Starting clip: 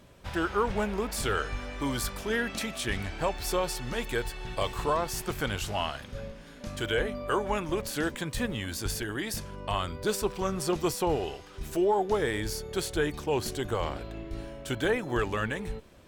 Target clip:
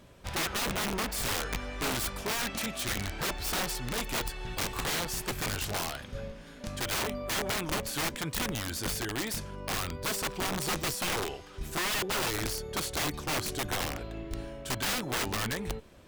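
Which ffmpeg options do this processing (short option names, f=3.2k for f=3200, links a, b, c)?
-af "aeval=exprs='(mod(18.8*val(0)+1,2)-1)/18.8':c=same"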